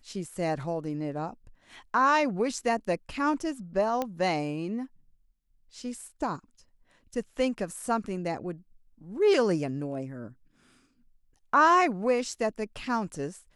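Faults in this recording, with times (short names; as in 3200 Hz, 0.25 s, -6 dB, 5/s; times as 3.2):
4.02 pop -16 dBFS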